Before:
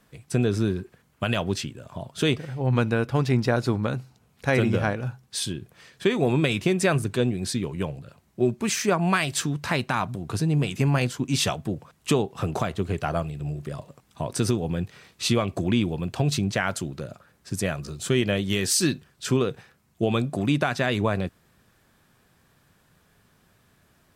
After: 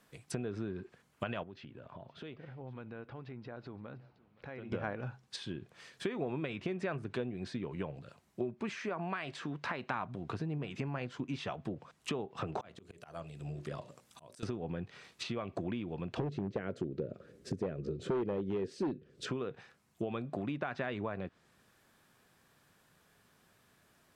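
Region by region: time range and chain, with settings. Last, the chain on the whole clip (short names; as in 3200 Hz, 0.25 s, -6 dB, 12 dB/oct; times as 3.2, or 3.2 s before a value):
1.43–4.72 compressor 5:1, threshold -37 dBFS + air absorption 340 m + echo 0.518 s -22 dB
8.76–9.91 HPF 210 Hz 6 dB/oct + compressor, threshold -24 dBFS + mismatched tape noise reduction decoder only
12.47–14.43 high shelf 5100 Hz +7 dB + notches 60/120/180/240/300/360/420/480/540/600 Hz + auto swell 0.562 s
16.17–19.27 resonant low shelf 620 Hz +11 dB, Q 3 + hard clip -7 dBFS
whole clip: compressor 12:1, threshold -26 dBFS; low shelf 150 Hz -10 dB; treble ducked by the level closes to 2200 Hz, closed at -30.5 dBFS; gain -4 dB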